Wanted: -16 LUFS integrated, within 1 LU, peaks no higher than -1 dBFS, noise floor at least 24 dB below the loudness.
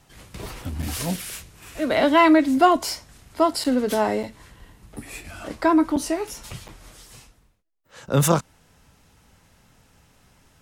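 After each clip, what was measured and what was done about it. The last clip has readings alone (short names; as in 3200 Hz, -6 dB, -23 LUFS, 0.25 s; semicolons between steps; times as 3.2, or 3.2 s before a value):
dropouts 5; longest dropout 6.8 ms; loudness -21.5 LUFS; peak -3.5 dBFS; loudness target -16.0 LUFS
-> interpolate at 0.82/3.64/4.23/5.96/6.68, 6.8 ms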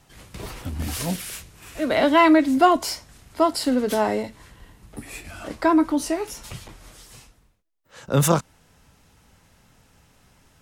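dropouts 0; loudness -21.0 LUFS; peak -3.5 dBFS; loudness target -16.0 LUFS
-> gain +5 dB; limiter -1 dBFS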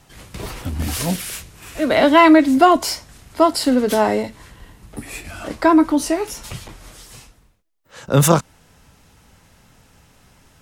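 loudness -16.5 LUFS; peak -1.0 dBFS; noise floor -54 dBFS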